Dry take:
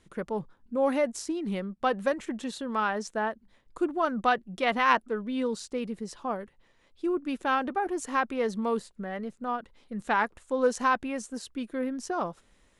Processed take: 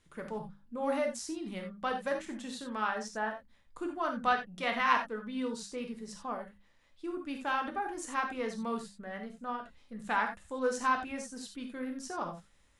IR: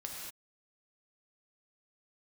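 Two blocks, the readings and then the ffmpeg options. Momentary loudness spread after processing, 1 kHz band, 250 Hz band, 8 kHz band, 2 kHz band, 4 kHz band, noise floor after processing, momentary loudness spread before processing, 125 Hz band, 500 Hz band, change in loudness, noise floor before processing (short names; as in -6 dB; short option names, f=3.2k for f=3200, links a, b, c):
12 LU, -4.5 dB, -7.0 dB, -3.0 dB, -3.5 dB, -3.5 dB, -65 dBFS, 10 LU, n/a, -7.5 dB, -5.5 dB, -65 dBFS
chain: -filter_complex "[0:a]equalizer=f=400:t=o:w=1.9:g=-5.5,bandreject=f=50:t=h:w=6,bandreject=f=100:t=h:w=6,bandreject=f=150:t=h:w=6,bandreject=f=200:t=h:w=6[a];[1:a]atrim=start_sample=2205,afade=t=out:st=0.14:d=0.01,atrim=end_sample=6615[b];[a][b]afir=irnorm=-1:irlink=0"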